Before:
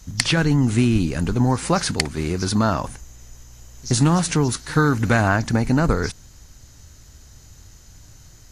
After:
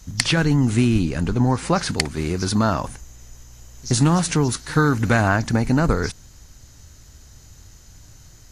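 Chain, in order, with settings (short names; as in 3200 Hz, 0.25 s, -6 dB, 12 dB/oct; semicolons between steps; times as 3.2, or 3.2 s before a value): 0.99–1.88 high shelf 9000 Hz -> 6600 Hz -7.5 dB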